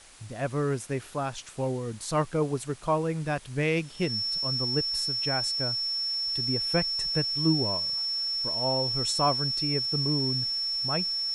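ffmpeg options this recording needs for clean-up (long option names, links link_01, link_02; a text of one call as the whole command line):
ffmpeg -i in.wav -af "bandreject=frequency=5400:width=30,afwtdn=0.0032" out.wav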